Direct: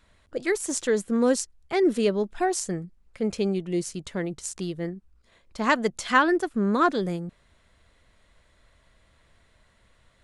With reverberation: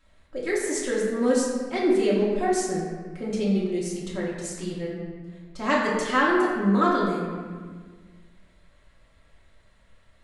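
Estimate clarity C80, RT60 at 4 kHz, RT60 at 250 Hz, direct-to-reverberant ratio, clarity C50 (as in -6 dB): 2.5 dB, 1.0 s, 2.1 s, -6.5 dB, 0.5 dB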